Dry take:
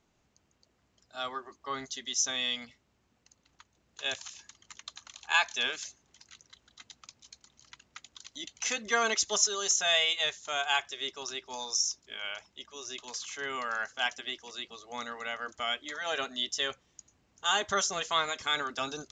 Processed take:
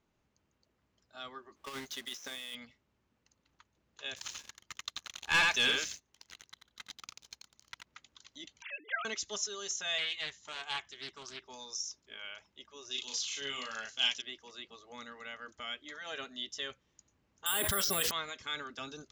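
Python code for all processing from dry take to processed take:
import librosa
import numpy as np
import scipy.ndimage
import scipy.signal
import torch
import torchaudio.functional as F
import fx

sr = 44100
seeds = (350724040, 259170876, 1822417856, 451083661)

y = fx.chain(x, sr, fx.halfwave_hold(),
    fx.low_shelf(hz=300.0, db=-10.5),
    fx.over_compress(threshold_db=-35.0, ratio=-1.0), at=(1.56, 2.55))
y = fx.chain(y, sr, fx.echo_single(ms=86, db=-4.0),
    fx.leveller(passes=3), at=(4.16, 7.87))
y = fx.chain(y, sr, fx.sine_speech(),
    fx.low_shelf(hz=460.0, db=-10.5), at=(8.62, 9.05))
y = fx.chain(y, sr, fx.comb(ms=1.0, depth=0.36),
    fx.doppler_dist(depth_ms=0.38), at=(9.98, 11.42))
y = fx.chain(y, sr, fx.high_shelf_res(hz=2300.0, db=9.5, q=1.5),
    fx.doubler(ms=36.0, db=-2.0), at=(12.91, 14.22))
y = fx.chain(y, sr, fx.resample_bad(factor=4, down='filtered', up='zero_stuff'),
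    fx.env_flatten(amount_pct=100), at=(17.46, 18.11))
y = fx.high_shelf(y, sr, hz=6000.0, db=-11.0)
y = fx.notch(y, sr, hz=720.0, q=12.0)
y = fx.dynamic_eq(y, sr, hz=830.0, q=0.79, threshold_db=-47.0, ratio=4.0, max_db=-7)
y = y * 10.0 ** (-4.5 / 20.0)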